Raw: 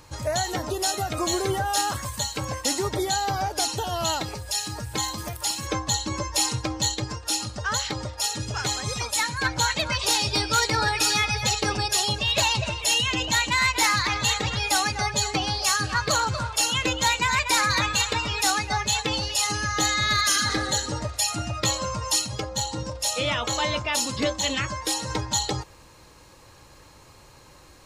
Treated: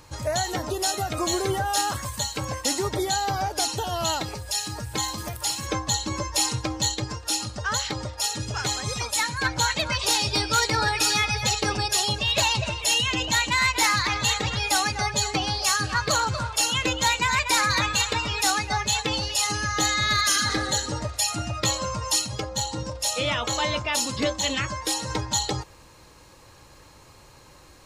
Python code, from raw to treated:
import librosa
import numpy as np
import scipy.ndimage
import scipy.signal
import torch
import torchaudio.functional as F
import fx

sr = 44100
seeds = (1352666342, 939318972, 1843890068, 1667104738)

y = fx.echo_throw(x, sr, start_s=4.54, length_s=0.64, ms=540, feedback_pct=50, wet_db=-17.0)